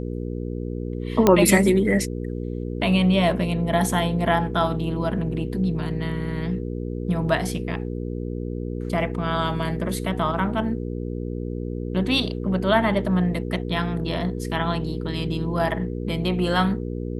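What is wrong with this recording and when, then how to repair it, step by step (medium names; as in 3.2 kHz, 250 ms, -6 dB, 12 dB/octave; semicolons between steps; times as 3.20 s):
hum 60 Hz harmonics 8 -29 dBFS
1.27 s: pop -3 dBFS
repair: de-click; de-hum 60 Hz, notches 8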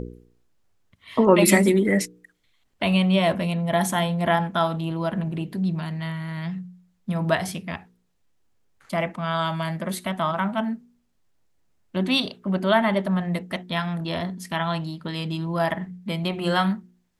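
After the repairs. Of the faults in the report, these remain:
nothing left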